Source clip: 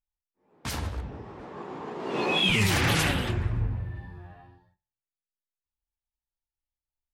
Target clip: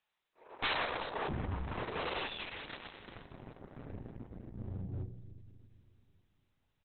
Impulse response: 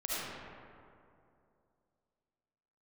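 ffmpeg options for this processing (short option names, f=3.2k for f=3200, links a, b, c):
-filter_complex "[0:a]asetrate=45938,aresample=44100,highpass=f=43:w=0.5412,highpass=f=43:w=1.3066,asplit=2[a][b];[b]adelay=32,volume=-6dB[c];[a][c]amix=inputs=2:normalize=0,acrossover=split=400|5600[d][e][f];[f]adelay=370[g];[d]adelay=660[h];[h][e][g]amix=inputs=3:normalize=0,acompressor=threshold=-44dB:ratio=3,aeval=exprs='0.0376*(cos(1*acos(clip(val(0)/0.0376,-1,1)))-cos(1*PI/2))+0.0133*(cos(4*acos(clip(val(0)/0.0376,-1,1)))-cos(4*PI/2))':c=same,asplit=2[i][j];[1:a]atrim=start_sample=2205,lowpass=2.6k[k];[j][k]afir=irnorm=-1:irlink=0,volume=-22dB[l];[i][l]amix=inputs=2:normalize=0,aeval=exprs='0.0708*(cos(1*acos(clip(val(0)/0.0708,-1,1)))-cos(1*PI/2))+0.00158*(cos(2*acos(clip(val(0)/0.0708,-1,1)))-cos(2*PI/2))':c=same,asoftclip=type=hard:threshold=-39.5dB,acontrast=62,volume=6.5dB" -ar 48000 -c:a libopus -b:a 6k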